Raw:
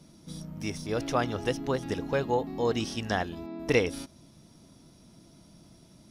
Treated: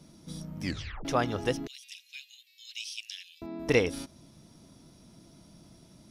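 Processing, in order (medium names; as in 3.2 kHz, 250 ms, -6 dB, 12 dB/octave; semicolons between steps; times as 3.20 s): 0.62 s: tape stop 0.43 s; 1.67–3.42 s: Chebyshev high-pass 2.4 kHz, order 5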